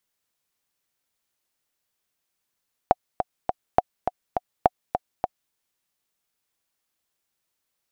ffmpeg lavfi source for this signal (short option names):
-f lavfi -i "aevalsrc='pow(10,(-2-7.5*gte(mod(t,3*60/206),60/206))/20)*sin(2*PI*732*mod(t,60/206))*exp(-6.91*mod(t,60/206)/0.03)':d=2.62:s=44100"